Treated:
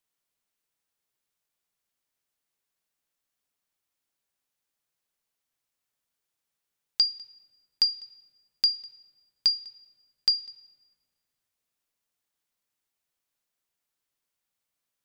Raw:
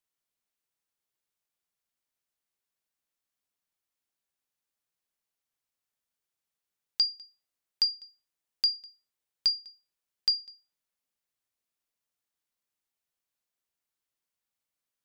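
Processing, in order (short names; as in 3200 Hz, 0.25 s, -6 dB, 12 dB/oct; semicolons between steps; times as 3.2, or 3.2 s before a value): shoebox room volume 2200 m³, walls mixed, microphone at 0.3 m; gain +3.5 dB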